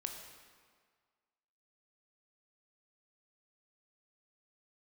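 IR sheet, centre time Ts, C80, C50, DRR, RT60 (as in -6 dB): 45 ms, 6.5 dB, 5.0 dB, 3.0 dB, 1.8 s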